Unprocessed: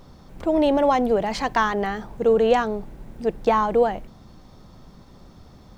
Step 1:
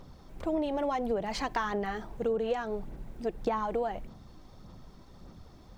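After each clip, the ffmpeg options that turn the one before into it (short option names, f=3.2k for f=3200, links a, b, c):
-af "aphaser=in_gain=1:out_gain=1:delay=3.1:decay=0.35:speed=1.7:type=sinusoidal,acompressor=threshold=-21dB:ratio=6,volume=-6dB"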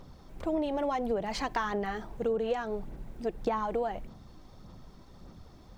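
-af anull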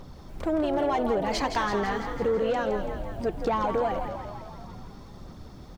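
-filter_complex "[0:a]asoftclip=type=tanh:threshold=-24.5dB,asplit=2[a][b];[b]asplit=8[c][d][e][f][g][h][i][j];[c]adelay=166,afreqshift=46,volume=-8dB[k];[d]adelay=332,afreqshift=92,volume=-12.3dB[l];[e]adelay=498,afreqshift=138,volume=-16.6dB[m];[f]adelay=664,afreqshift=184,volume=-20.9dB[n];[g]adelay=830,afreqshift=230,volume=-25.2dB[o];[h]adelay=996,afreqshift=276,volume=-29.5dB[p];[i]adelay=1162,afreqshift=322,volume=-33.8dB[q];[j]adelay=1328,afreqshift=368,volume=-38.1dB[r];[k][l][m][n][o][p][q][r]amix=inputs=8:normalize=0[s];[a][s]amix=inputs=2:normalize=0,volume=6dB"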